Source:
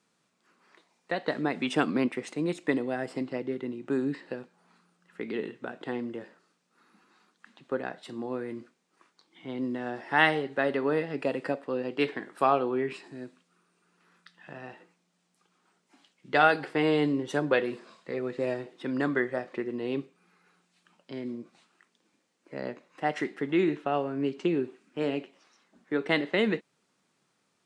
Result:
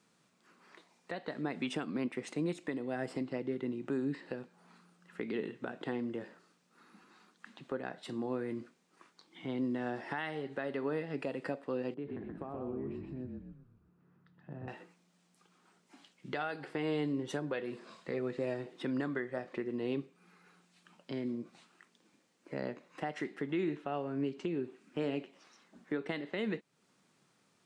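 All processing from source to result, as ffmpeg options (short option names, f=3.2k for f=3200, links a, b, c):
-filter_complex "[0:a]asettb=1/sr,asplit=3[a][b][c];[a]atrim=end=11.944[d];[b]atrim=start=11.94:end=14.68,asetpts=PTS-STARTPTS,afade=t=in:d=0.004:c=qsin,afade=t=out:st=2.736:d=0.004:c=qsin,acompressor=threshold=-33dB:ratio=3:attack=3.2:release=140:knee=1:detection=peak,bandpass=f=120:t=q:w=0.53,asplit=6[e][f][g][h][i][j];[f]adelay=126,afreqshift=-36,volume=-3.5dB[k];[g]adelay=252,afreqshift=-72,volume=-11dB[l];[h]adelay=378,afreqshift=-108,volume=-18.6dB[m];[i]adelay=504,afreqshift=-144,volume=-26.1dB[n];[j]adelay=630,afreqshift=-180,volume=-33.6dB[o];[e][k][l][m][n][o]amix=inputs=6:normalize=0,atrim=end_sample=120834[p];[c]atrim=start=14.676[q];[d][p]acrossfade=d=0.004:c1=hsin:c2=qsin[r];[r][q]acrossfade=d=0.004:c1=qsin:c2=hsin,equalizer=f=130:t=o:w=2:g=3.5,acompressor=threshold=-42dB:ratio=1.5,alimiter=level_in=2.5dB:limit=-24dB:level=0:latency=1:release=363,volume=-2.5dB,volume=1.5dB"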